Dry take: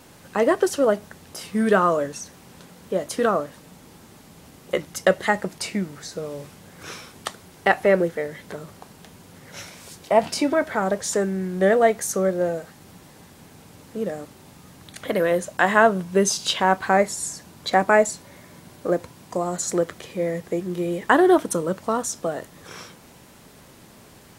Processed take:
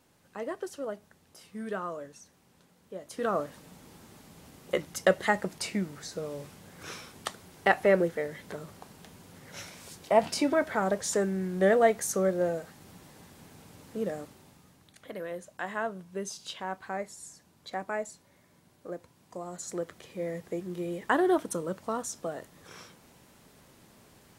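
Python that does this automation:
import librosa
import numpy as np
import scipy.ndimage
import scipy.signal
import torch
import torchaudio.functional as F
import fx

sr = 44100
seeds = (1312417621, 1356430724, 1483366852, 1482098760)

y = fx.gain(x, sr, db=fx.line((3.01, -17.0), (3.41, -5.0), (14.2, -5.0), (14.99, -17.0), (19.0, -17.0), (20.33, -9.0)))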